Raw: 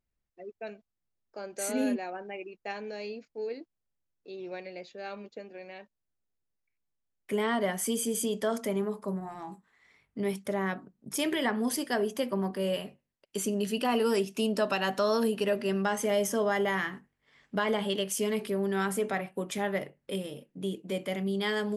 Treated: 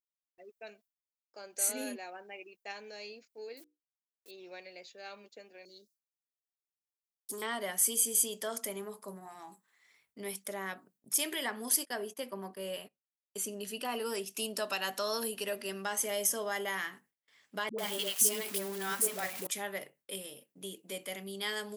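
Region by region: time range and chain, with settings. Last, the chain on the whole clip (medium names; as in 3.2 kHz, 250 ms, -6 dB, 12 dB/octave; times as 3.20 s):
3.57–4.31 s: word length cut 10-bit, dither none + hum notches 60/120/180/240/300/360/420/480 Hz
5.65–7.42 s: inverse Chebyshev band-stop 660–2700 Hz + compression 1.5:1, threshold -37 dBFS + overdrive pedal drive 19 dB, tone 4.8 kHz, clips at -24 dBFS
11.85–14.26 s: gate -42 dBFS, range -19 dB + treble shelf 3 kHz -7 dB
17.69–19.47 s: jump at every zero crossing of -35.5 dBFS + phase dispersion highs, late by 95 ms, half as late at 450 Hz
whole clip: RIAA curve recording; gate with hold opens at -56 dBFS; trim -6.5 dB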